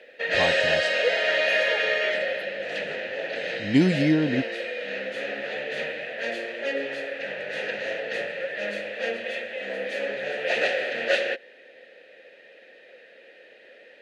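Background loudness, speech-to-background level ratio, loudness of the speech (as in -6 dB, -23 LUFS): -26.5 LUFS, 2.0 dB, -24.5 LUFS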